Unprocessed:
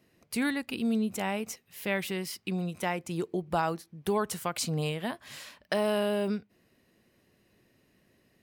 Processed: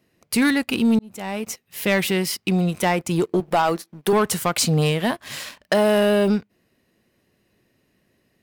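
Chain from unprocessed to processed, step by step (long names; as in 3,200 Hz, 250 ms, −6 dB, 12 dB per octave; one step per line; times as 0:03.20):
0:03.40–0:04.13: high-pass filter 200 Hz 12 dB per octave
leveller curve on the samples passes 2
0:00.99–0:01.81: fade in
level +5 dB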